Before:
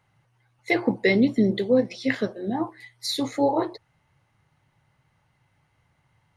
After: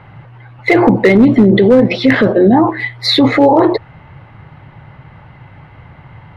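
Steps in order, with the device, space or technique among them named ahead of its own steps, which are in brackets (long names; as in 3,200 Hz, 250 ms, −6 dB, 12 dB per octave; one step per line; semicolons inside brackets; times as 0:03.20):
high-frequency loss of the air 440 metres
loud club master (downward compressor 1.5 to 1, threshold −28 dBFS, peak gain reduction 5 dB; hard clipping −19 dBFS, distortion −20 dB; boost into a limiter +31 dB)
level −1 dB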